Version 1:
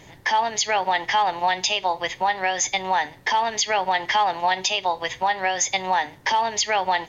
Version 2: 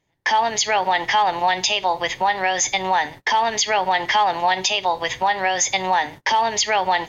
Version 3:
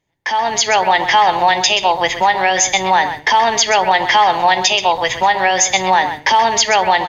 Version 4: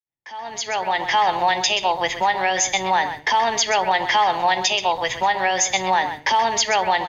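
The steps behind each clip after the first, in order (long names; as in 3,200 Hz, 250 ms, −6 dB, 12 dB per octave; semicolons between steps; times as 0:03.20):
noise gate −39 dBFS, range −31 dB; in parallel at −1 dB: brickwall limiter −21 dBFS, peak gain reduction 10 dB
automatic gain control gain up to 10 dB; slap from a distant wall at 22 metres, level −10 dB; level −1 dB
fade in at the beginning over 1.25 s; level −6 dB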